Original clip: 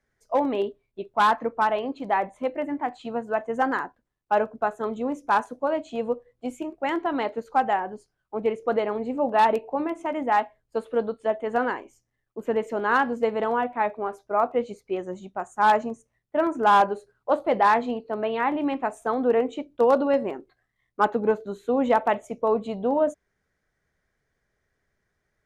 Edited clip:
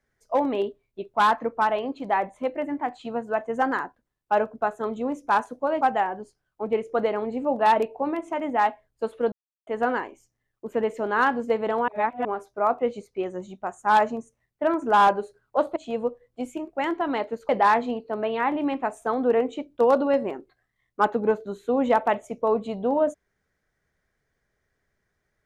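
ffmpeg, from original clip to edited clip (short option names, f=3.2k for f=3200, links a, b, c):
-filter_complex "[0:a]asplit=8[a][b][c][d][e][f][g][h];[a]atrim=end=5.812[i];[b]atrim=start=7.538:end=11.05,asetpts=PTS-STARTPTS,afade=t=out:st=3.508:d=0.004:c=hsin[j];[c]atrim=start=11.05:end=11.4,asetpts=PTS-STARTPTS,volume=0[k];[d]atrim=start=11.4:end=13.612,asetpts=PTS-STARTPTS,afade=t=in:d=0.004:c=hsin[l];[e]atrim=start=13.608:end=13.982,asetpts=PTS-STARTPTS,areverse[m];[f]atrim=start=13.978:end=17.492[n];[g]atrim=start=5.808:end=7.542[o];[h]atrim=start=17.488[p];[j][k][l]concat=n=3:v=0:a=1[q];[i][q]acrossfade=d=0.004:c1=hsin:c2=hsin[r];[r][m]acrossfade=d=0.004:c1=hsin:c2=hsin[s];[s][n]acrossfade=d=0.004:c1=hsin:c2=hsin[t];[t][o]acrossfade=d=0.004:c1=hsin:c2=hsin[u];[u][p]acrossfade=d=0.004:c1=hsin:c2=hsin"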